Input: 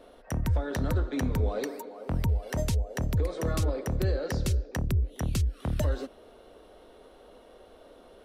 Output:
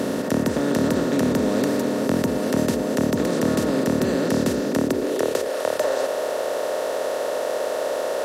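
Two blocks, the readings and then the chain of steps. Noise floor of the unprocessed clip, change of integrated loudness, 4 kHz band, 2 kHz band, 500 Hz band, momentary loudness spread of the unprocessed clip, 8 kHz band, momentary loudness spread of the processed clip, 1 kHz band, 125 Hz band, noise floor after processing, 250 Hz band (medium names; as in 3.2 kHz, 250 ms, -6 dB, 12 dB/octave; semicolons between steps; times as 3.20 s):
-54 dBFS, +7.5 dB, +11.0 dB, +11.0 dB, +14.0 dB, 6 LU, +10.0 dB, 4 LU, +12.5 dB, -2.5 dB, -27 dBFS, +14.0 dB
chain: spectral levelling over time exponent 0.2; high-pass sweep 220 Hz -> 580 Hz, 4.72–5.55 s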